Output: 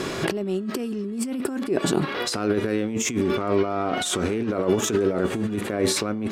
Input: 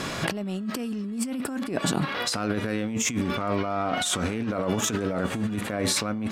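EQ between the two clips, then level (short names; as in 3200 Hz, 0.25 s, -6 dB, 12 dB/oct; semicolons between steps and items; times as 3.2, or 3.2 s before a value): bell 380 Hz +12.5 dB 0.48 oct; 0.0 dB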